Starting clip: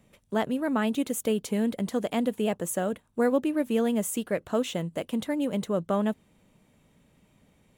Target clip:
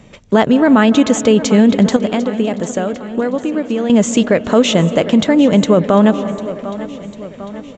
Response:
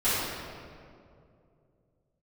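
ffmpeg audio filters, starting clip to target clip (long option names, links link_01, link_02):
-filter_complex "[0:a]asettb=1/sr,asplit=3[link_01][link_02][link_03];[link_01]atrim=end=1.964[link_04];[link_02]atrim=start=1.96:end=3.9,asetpts=PTS-STARTPTS,afade=type=in:duration=0.004:curve=qsin,afade=type=out:start_time=1.936:duration=0.004:curve=qsin,acompressor=threshold=-35dB:ratio=6[link_05];[link_03]atrim=start=3.896[link_06];[link_04][link_05]acrossfade=duration=0.004:curve1=hsin:curve2=qsin[link_07];[link_07][link_06]acrossfade=duration=0.004:curve1=qsin:curve2=hsin,aecho=1:1:749|1498|2247|2996|3745:0.126|0.0743|0.0438|0.0259|0.0153,asplit=2[link_08][link_09];[1:a]atrim=start_sample=2205,lowpass=2700,adelay=150[link_10];[link_09][link_10]afir=irnorm=-1:irlink=0,volume=-29dB[link_11];[link_08][link_11]amix=inputs=2:normalize=0,aresample=16000,aresample=44100,alimiter=level_in=20dB:limit=-1dB:release=50:level=0:latency=1,volume=-1dB"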